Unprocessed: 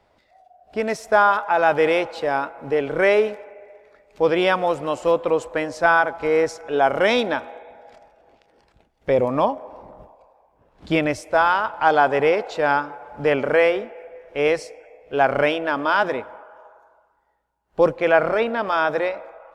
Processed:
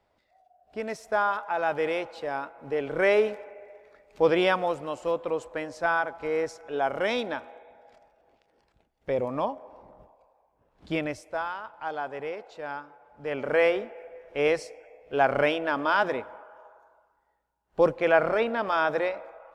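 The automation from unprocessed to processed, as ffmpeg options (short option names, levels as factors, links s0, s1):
-af "volume=2.82,afade=t=in:st=2.59:d=0.82:silence=0.473151,afade=t=out:st=4.31:d=0.56:silence=0.501187,afade=t=out:st=11.01:d=0.53:silence=0.421697,afade=t=in:st=13.22:d=0.44:silence=0.251189"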